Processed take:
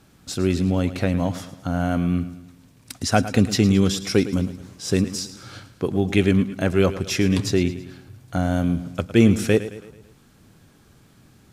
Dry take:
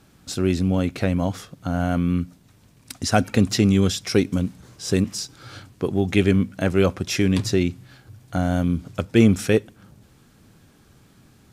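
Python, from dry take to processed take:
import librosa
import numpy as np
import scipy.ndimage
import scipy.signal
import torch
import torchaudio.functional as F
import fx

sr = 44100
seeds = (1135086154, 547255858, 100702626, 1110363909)

y = fx.echo_feedback(x, sr, ms=109, feedback_pct=48, wet_db=-14.0)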